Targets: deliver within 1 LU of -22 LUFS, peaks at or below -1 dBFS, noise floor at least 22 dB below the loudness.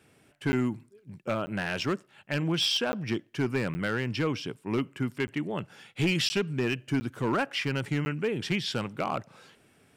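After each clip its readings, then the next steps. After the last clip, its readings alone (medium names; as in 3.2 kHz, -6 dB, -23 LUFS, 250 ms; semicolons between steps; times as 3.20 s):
clipped samples 0.9%; clipping level -20.0 dBFS; dropouts 8; longest dropout 10 ms; loudness -30.0 LUFS; peak level -20.0 dBFS; loudness target -22.0 LUFS
-> clip repair -20 dBFS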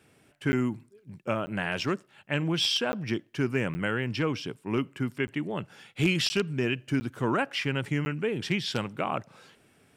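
clipped samples 0.0%; dropouts 8; longest dropout 10 ms
-> interpolate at 0.52/1.46/2.92/3.74/5.27/6.29/7.00/8.05 s, 10 ms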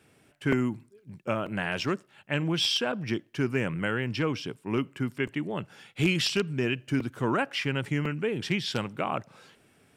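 dropouts 0; loudness -29.5 LUFS; peak level -11.0 dBFS; loudness target -22.0 LUFS
-> trim +7.5 dB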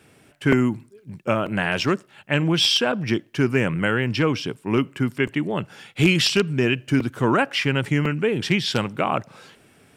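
loudness -22.0 LUFS; peak level -3.5 dBFS; noise floor -56 dBFS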